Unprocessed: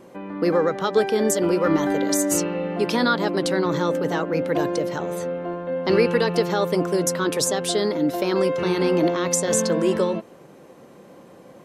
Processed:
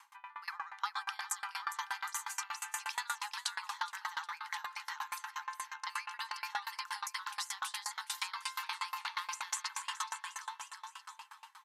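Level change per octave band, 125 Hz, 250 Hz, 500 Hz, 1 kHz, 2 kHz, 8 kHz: below −40 dB, below −40 dB, below −40 dB, −11.0 dB, −9.5 dB, −14.0 dB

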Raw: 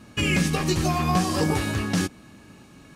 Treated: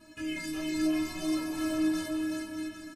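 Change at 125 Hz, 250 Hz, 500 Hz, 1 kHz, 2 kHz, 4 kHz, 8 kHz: −24.0, −3.0, −9.0, −17.0, −10.5, −10.5, −10.5 decibels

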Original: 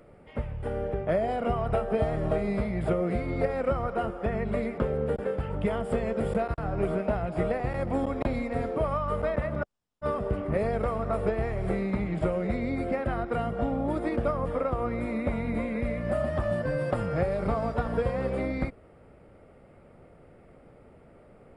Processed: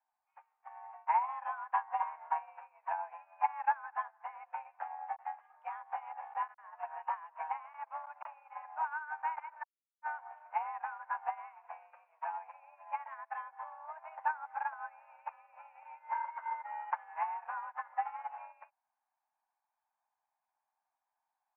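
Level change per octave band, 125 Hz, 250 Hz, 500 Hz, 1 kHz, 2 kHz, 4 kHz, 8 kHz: below −40 dB, below −40 dB, −27.5 dB, −0.5 dB, −6.0 dB, below −20 dB, can't be measured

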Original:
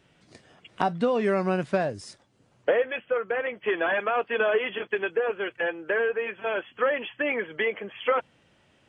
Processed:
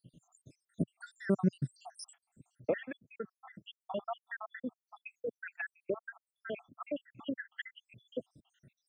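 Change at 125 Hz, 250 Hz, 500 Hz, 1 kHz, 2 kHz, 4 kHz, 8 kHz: −2.0 dB, −5.0 dB, −15.5 dB, −17.5 dB, −16.5 dB, −14.5 dB, can't be measured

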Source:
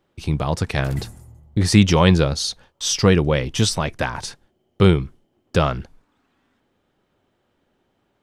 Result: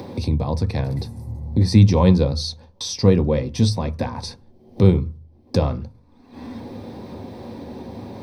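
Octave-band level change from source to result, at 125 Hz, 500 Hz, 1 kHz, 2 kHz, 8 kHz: +1.5, −1.0, −5.0, −11.5, −8.5 decibels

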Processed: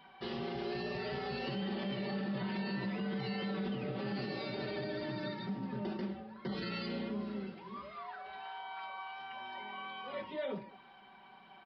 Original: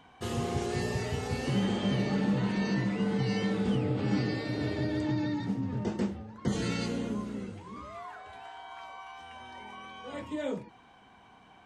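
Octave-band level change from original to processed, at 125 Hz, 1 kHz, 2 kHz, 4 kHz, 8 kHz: −11.0 dB, −3.0 dB, −3.5 dB, −3.5 dB, below −25 dB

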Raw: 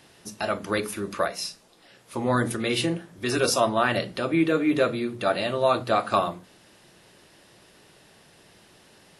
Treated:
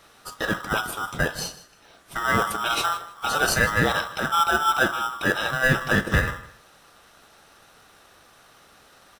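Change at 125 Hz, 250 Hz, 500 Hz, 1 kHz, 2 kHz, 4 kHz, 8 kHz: +3.5, −4.5, −4.5, +3.0, +9.0, +3.0, +2.5 decibels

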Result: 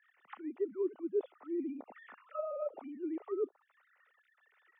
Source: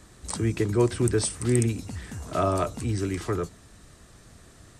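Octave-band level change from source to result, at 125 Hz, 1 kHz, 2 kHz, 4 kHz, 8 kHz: below −40 dB, −17.0 dB, −19.0 dB, below −30 dB, below −40 dB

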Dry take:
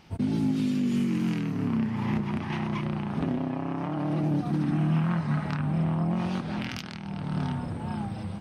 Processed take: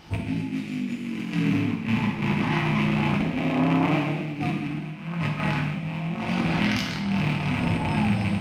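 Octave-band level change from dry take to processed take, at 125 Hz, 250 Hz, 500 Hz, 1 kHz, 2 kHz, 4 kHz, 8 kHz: +2.0 dB, +2.5 dB, +4.0 dB, +5.5 dB, +11.0 dB, +9.0 dB, can't be measured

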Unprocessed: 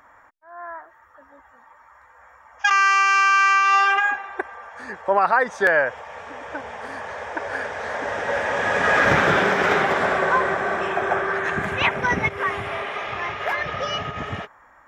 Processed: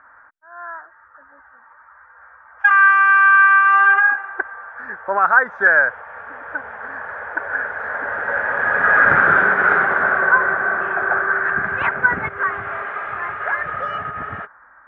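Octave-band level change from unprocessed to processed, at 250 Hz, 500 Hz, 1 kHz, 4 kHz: −4.0 dB, −3.5 dB, +3.0 dB, below −10 dB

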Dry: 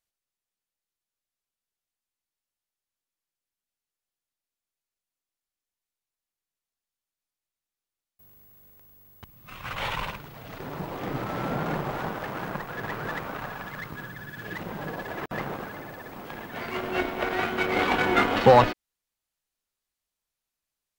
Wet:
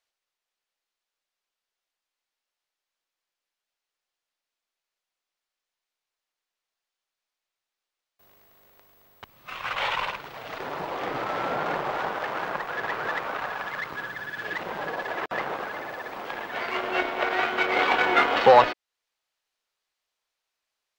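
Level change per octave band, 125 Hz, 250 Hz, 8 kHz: −11.5, −5.5, −1.5 decibels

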